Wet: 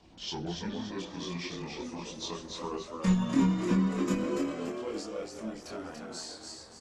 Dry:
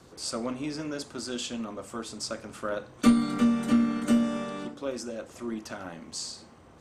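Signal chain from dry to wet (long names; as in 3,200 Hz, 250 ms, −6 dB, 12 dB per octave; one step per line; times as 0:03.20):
pitch glide at a constant tempo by −7.5 semitones ending unshifted
echo with shifted repeats 287 ms, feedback 45%, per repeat +83 Hz, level −4.5 dB
multi-voice chorus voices 6, 0.34 Hz, delay 25 ms, depth 3.2 ms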